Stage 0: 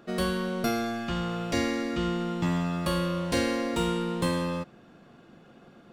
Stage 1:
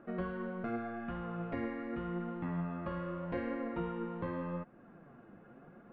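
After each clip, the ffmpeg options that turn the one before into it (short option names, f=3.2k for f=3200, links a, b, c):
-af "lowpass=f=2k:w=0.5412,lowpass=f=2k:w=1.3066,acompressor=threshold=-44dB:ratio=1.5,flanger=delay=3.1:depth=7.3:regen=52:speed=0.84:shape=triangular,volume=1dB"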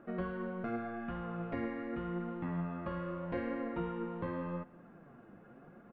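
-af "aecho=1:1:239:0.0841"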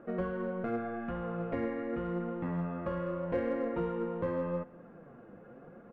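-filter_complex "[0:a]lowpass=f=3k:p=1,equalizer=f=500:t=o:w=0.33:g=8.5,asplit=2[a][b];[b]volume=32dB,asoftclip=hard,volume=-32dB,volume=-9.5dB[c];[a][c]amix=inputs=2:normalize=0"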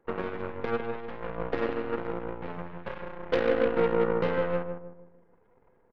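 -filter_complex "[0:a]superequalizer=7b=3.16:9b=2:11b=2.24,aeval=exprs='0.158*(cos(1*acos(clip(val(0)/0.158,-1,1)))-cos(1*PI/2))+0.0178*(cos(4*acos(clip(val(0)/0.158,-1,1)))-cos(4*PI/2))+0.0224*(cos(6*acos(clip(val(0)/0.158,-1,1)))-cos(6*PI/2))+0.0251*(cos(7*acos(clip(val(0)/0.158,-1,1)))-cos(7*PI/2))':c=same,asplit=2[a][b];[b]adelay=155,lowpass=f=830:p=1,volume=-5dB,asplit=2[c][d];[d]adelay=155,lowpass=f=830:p=1,volume=0.44,asplit=2[e][f];[f]adelay=155,lowpass=f=830:p=1,volume=0.44,asplit=2[g][h];[h]adelay=155,lowpass=f=830:p=1,volume=0.44,asplit=2[i][j];[j]adelay=155,lowpass=f=830:p=1,volume=0.44[k];[c][e][g][i][k]amix=inputs=5:normalize=0[l];[a][l]amix=inputs=2:normalize=0"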